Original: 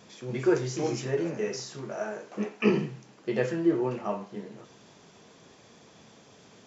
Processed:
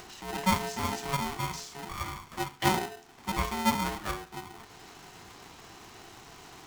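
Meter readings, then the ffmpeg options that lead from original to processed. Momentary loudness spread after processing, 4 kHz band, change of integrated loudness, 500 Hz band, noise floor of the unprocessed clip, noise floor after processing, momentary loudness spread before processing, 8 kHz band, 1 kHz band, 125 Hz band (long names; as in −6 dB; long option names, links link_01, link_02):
21 LU, +7.0 dB, −2.0 dB, −10.0 dB, −56 dBFS, −53 dBFS, 12 LU, can't be measured, +9.0 dB, −1.5 dB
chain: -af "aeval=exprs='0.316*(cos(1*acos(clip(val(0)/0.316,-1,1)))-cos(1*PI/2))+0.0178*(cos(6*acos(clip(val(0)/0.316,-1,1)))-cos(6*PI/2))':channel_layout=same,acompressor=mode=upward:threshold=-37dB:ratio=2.5,aeval=exprs='val(0)*sgn(sin(2*PI*560*n/s))':channel_layout=same,volume=-3dB"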